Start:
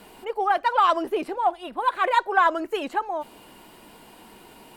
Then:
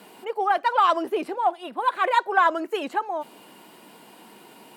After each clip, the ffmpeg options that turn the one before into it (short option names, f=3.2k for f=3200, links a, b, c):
-af "highpass=f=150:w=0.5412,highpass=f=150:w=1.3066"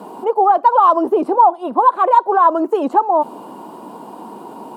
-af "equalizer=f=460:w=0.34:g=13,alimiter=limit=-9.5dB:level=0:latency=1:release=293,equalizer=f=125:t=o:w=1:g=6,equalizer=f=250:t=o:w=1:g=6,equalizer=f=1k:t=o:w=1:g=12,equalizer=f=2k:t=o:w=1:g=-11,equalizer=f=8k:t=o:w=1:g=3,volume=-1.5dB"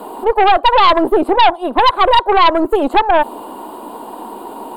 -af "aeval=exprs='0.891*(cos(1*acos(clip(val(0)/0.891,-1,1)))-cos(1*PI/2))+0.178*(cos(5*acos(clip(val(0)/0.891,-1,1)))-cos(5*PI/2))+0.141*(cos(6*acos(clip(val(0)/0.891,-1,1)))-cos(6*PI/2))':c=same,equalizer=f=170:t=o:w=0.54:g=-14,aexciter=amount=1.1:drive=3:freq=3.1k,volume=-1dB"